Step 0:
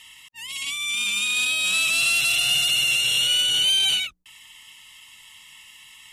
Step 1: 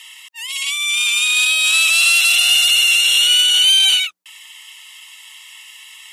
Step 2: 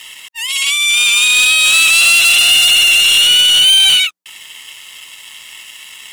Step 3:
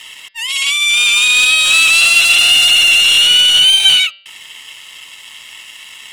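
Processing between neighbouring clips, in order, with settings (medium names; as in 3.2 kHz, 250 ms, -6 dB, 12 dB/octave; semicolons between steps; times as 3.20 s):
Bessel high-pass 930 Hz, order 2; trim +8 dB
waveshaping leveller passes 2
treble shelf 9.6 kHz -9.5 dB; de-hum 194.2 Hz, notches 26; trim +1 dB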